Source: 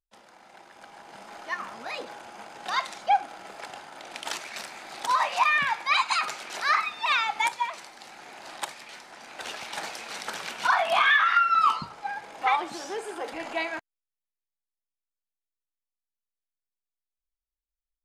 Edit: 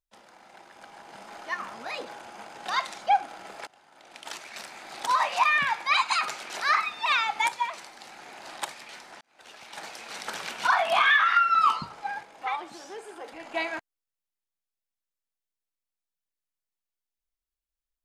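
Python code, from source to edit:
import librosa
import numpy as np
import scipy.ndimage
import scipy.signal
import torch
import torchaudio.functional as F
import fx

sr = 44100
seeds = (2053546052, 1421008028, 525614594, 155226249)

y = fx.edit(x, sr, fx.fade_in_from(start_s=3.67, length_s=1.37, floor_db=-22.0),
    fx.fade_in_span(start_s=9.21, length_s=1.16),
    fx.clip_gain(start_s=12.23, length_s=1.31, db=-7.0), tone=tone)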